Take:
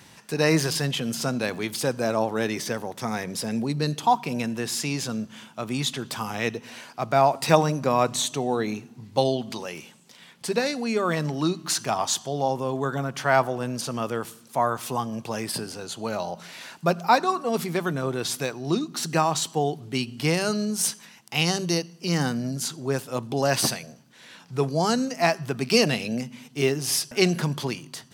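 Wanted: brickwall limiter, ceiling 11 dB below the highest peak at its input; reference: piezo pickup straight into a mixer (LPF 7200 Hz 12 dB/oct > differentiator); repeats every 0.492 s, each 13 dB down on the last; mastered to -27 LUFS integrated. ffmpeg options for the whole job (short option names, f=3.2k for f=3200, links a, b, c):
-af "alimiter=limit=-14.5dB:level=0:latency=1,lowpass=7.2k,aderivative,aecho=1:1:492|984|1476:0.224|0.0493|0.0108,volume=10.5dB"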